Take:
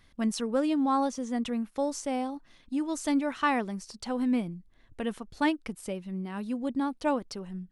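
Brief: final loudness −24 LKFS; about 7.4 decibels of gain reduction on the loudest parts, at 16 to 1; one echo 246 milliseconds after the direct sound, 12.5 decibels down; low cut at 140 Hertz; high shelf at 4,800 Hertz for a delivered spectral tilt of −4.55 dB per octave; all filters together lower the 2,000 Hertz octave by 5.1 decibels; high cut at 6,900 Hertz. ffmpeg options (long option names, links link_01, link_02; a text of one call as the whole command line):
ffmpeg -i in.wav -af "highpass=140,lowpass=6900,equalizer=frequency=2000:width_type=o:gain=-8,highshelf=frequency=4800:gain=8.5,acompressor=threshold=-30dB:ratio=16,aecho=1:1:246:0.237,volume=12dB" out.wav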